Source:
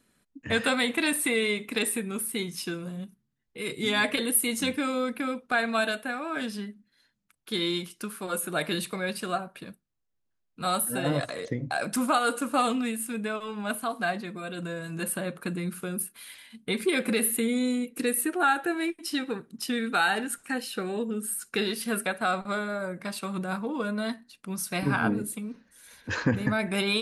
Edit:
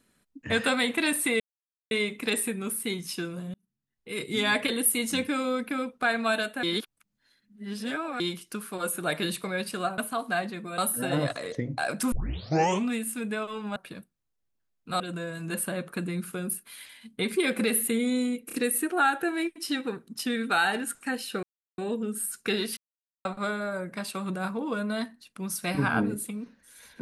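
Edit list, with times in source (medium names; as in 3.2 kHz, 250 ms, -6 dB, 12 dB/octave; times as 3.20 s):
1.40 s: insert silence 0.51 s
3.03–3.67 s: fade in
6.12–7.69 s: reverse
9.47–10.71 s: swap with 13.69–14.49 s
12.05 s: tape start 0.77 s
17.96 s: stutter 0.03 s, 3 plays
20.86 s: insert silence 0.35 s
21.85–22.33 s: mute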